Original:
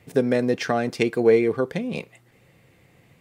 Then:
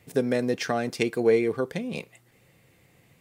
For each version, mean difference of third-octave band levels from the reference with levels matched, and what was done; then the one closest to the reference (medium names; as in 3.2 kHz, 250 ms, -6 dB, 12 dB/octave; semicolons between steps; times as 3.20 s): 1.5 dB: treble shelf 4.9 kHz +7.5 dB; trim -4 dB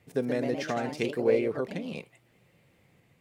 3.0 dB: ever faster or slower copies 145 ms, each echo +2 st, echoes 2, each echo -6 dB; trim -8.5 dB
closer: first